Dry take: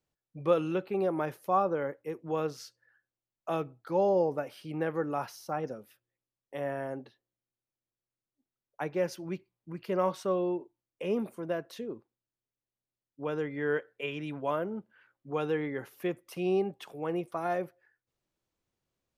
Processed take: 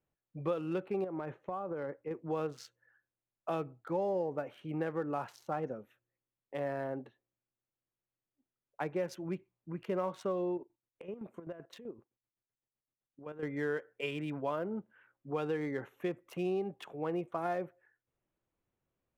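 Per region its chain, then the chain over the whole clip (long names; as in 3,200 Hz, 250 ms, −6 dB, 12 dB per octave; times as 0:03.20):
0:01.04–0:02.11: downward compressor 8 to 1, threshold −33 dBFS + high-frequency loss of the air 160 metres
0:10.57–0:13.43: downward compressor, threshold −38 dBFS + square-wave tremolo 7.8 Hz, depth 65%, duty 45%
whole clip: adaptive Wiener filter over 9 samples; downward compressor 4 to 1, threshold −31 dBFS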